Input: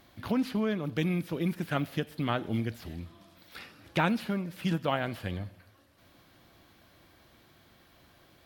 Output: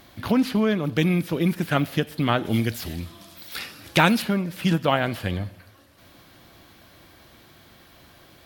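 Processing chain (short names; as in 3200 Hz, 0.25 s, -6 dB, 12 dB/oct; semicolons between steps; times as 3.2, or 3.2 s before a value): high shelf 3400 Hz +2.5 dB, from 2.45 s +11.5 dB, from 4.22 s +2.5 dB; gain +8 dB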